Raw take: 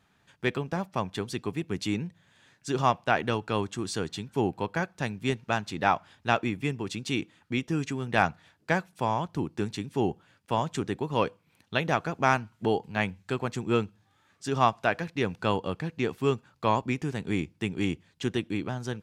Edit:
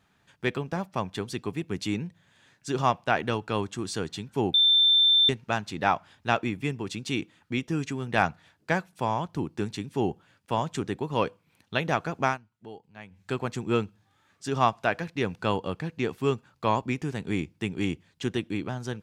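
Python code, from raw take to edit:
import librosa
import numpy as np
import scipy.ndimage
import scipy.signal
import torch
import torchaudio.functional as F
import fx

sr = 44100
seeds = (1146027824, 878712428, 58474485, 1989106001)

y = fx.edit(x, sr, fx.bleep(start_s=4.54, length_s=0.75, hz=3560.0, db=-16.5),
    fx.fade_down_up(start_s=12.24, length_s=1.0, db=-17.5, fade_s=0.14), tone=tone)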